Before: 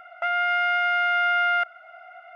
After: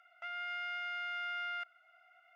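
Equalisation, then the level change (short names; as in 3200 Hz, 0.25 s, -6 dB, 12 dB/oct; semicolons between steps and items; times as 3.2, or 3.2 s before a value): air absorption 68 m; differentiator; -3.5 dB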